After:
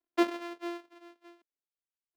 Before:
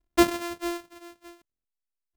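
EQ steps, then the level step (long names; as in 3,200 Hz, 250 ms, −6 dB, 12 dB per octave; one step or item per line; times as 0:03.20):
three-way crossover with the lows and the highs turned down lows −21 dB, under 220 Hz, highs −15 dB, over 4,700 Hz
low shelf with overshoot 220 Hz −6.5 dB, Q 1.5
−7.0 dB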